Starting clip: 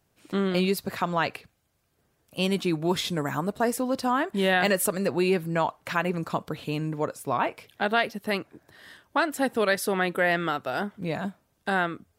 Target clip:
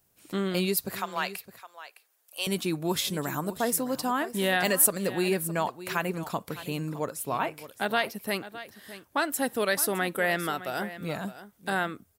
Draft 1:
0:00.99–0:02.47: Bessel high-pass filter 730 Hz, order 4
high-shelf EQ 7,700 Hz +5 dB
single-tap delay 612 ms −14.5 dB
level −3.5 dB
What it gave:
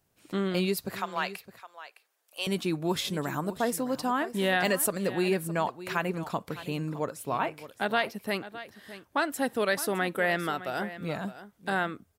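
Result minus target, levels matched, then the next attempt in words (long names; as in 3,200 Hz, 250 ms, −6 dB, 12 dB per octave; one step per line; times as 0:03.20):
8,000 Hz band −5.5 dB
0:00.99–0:02.47: Bessel high-pass filter 730 Hz, order 4
high-shelf EQ 7,700 Hz +16.5 dB
single-tap delay 612 ms −14.5 dB
level −3.5 dB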